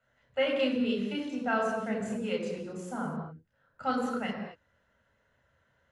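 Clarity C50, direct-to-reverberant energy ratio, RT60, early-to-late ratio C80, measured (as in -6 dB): 3.5 dB, -1.0 dB, no single decay rate, 5.0 dB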